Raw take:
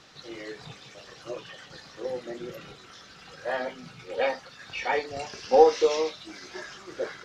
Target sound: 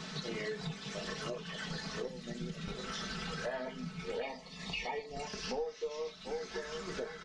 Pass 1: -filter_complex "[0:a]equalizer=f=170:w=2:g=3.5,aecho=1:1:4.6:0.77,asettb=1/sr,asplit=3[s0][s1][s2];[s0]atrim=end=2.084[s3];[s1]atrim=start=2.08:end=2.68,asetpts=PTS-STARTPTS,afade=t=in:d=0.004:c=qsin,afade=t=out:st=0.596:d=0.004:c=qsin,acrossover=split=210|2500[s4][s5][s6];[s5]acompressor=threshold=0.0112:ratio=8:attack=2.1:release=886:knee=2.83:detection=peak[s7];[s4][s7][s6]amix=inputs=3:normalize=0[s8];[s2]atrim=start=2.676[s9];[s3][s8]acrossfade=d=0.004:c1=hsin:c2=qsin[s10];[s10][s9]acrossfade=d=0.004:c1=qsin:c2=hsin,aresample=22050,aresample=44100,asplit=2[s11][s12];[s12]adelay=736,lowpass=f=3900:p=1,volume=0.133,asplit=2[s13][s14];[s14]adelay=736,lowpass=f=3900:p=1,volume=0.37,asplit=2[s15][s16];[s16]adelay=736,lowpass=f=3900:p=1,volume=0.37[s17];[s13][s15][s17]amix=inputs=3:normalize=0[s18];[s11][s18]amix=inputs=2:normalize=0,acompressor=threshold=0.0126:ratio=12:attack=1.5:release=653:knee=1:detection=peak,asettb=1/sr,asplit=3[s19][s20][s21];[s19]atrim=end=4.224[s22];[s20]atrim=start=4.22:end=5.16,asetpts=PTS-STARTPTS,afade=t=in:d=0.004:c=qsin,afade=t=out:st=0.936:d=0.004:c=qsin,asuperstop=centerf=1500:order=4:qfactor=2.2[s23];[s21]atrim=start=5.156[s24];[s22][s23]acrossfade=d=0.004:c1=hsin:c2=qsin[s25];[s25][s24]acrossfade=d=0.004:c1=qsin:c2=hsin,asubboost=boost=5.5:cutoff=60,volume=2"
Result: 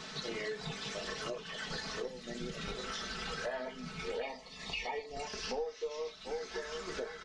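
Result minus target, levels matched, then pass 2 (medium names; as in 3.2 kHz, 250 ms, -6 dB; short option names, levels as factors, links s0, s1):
125 Hz band -5.0 dB
-filter_complex "[0:a]equalizer=f=170:w=2:g=13,aecho=1:1:4.6:0.77,asettb=1/sr,asplit=3[s0][s1][s2];[s0]atrim=end=2.084[s3];[s1]atrim=start=2.08:end=2.68,asetpts=PTS-STARTPTS,afade=t=in:d=0.004:c=qsin,afade=t=out:st=0.596:d=0.004:c=qsin,acrossover=split=210|2500[s4][s5][s6];[s5]acompressor=threshold=0.0112:ratio=8:attack=2.1:release=886:knee=2.83:detection=peak[s7];[s4][s7][s6]amix=inputs=3:normalize=0[s8];[s2]atrim=start=2.676[s9];[s3][s8]acrossfade=d=0.004:c1=hsin:c2=qsin[s10];[s10][s9]acrossfade=d=0.004:c1=qsin:c2=hsin,aresample=22050,aresample=44100,asplit=2[s11][s12];[s12]adelay=736,lowpass=f=3900:p=1,volume=0.133,asplit=2[s13][s14];[s14]adelay=736,lowpass=f=3900:p=1,volume=0.37,asplit=2[s15][s16];[s16]adelay=736,lowpass=f=3900:p=1,volume=0.37[s17];[s13][s15][s17]amix=inputs=3:normalize=0[s18];[s11][s18]amix=inputs=2:normalize=0,acompressor=threshold=0.0126:ratio=12:attack=1.5:release=653:knee=1:detection=peak,asettb=1/sr,asplit=3[s19][s20][s21];[s19]atrim=end=4.224[s22];[s20]atrim=start=4.22:end=5.16,asetpts=PTS-STARTPTS,afade=t=in:d=0.004:c=qsin,afade=t=out:st=0.936:d=0.004:c=qsin,asuperstop=centerf=1500:order=4:qfactor=2.2[s23];[s21]atrim=start=5.156[s24];[s22][s23]acrossfade=d=0.004:c1=hsin:c2=qsin[s25];[s25][s24]acrossfade=d=0.004:c1=qsin:c2=hsin,asubboost=boost=5.5:cutoff=60,volume=2"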